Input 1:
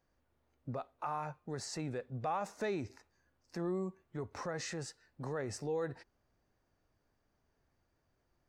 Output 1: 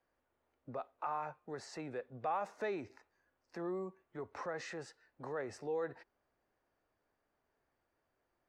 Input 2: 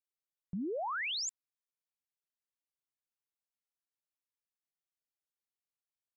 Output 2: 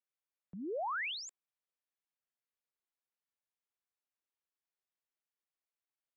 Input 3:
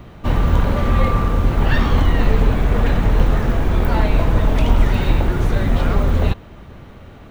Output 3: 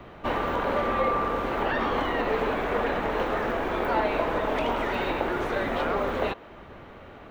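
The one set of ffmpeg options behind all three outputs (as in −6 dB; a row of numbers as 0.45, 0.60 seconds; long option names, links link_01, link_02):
-filter_complex "[0:a]bass=frequency=250:gain=-12,treble=frequency=4000:gain=-12,acrossover=split=230|1100[link_01][link_02][link_03];[link_01]acompressor=threshold=-38dB:ratio=5[link_04];[link_03]alimiter=level_in=1dB:limit=-24dB:level=0:latency=1:release=135,volume=-1dB[link_05];[link_04][link_02][link_05]amix=inputs=3:normalize=0"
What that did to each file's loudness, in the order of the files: −2.0, −2.5, −8.5 LU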